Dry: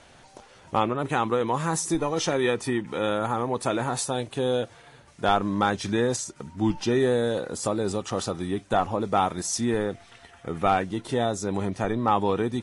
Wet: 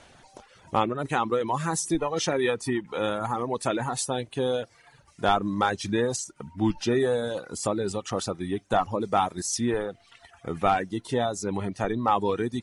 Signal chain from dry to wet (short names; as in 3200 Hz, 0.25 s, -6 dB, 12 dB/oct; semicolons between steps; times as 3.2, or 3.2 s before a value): reverb removal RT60 0.9 s